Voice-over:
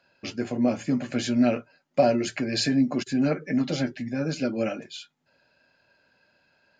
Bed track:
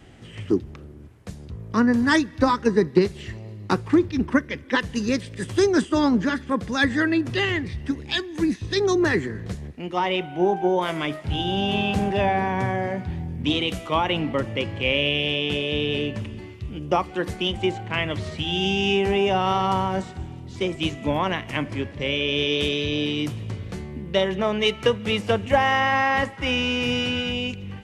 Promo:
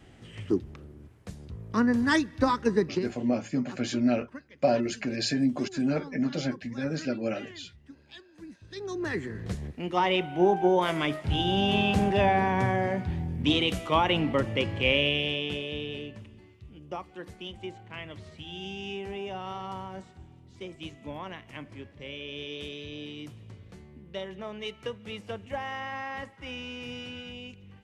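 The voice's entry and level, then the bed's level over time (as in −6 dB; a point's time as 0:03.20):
2.65 s, −3.5 dB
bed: 0:02.78 −5 dB
0:03.32 −23.5 dB
0:08.48 −23.5 dB
0:09.54 −1.5 dB
0:14.90 −1.5 dB
0:16.28 −15.5 dB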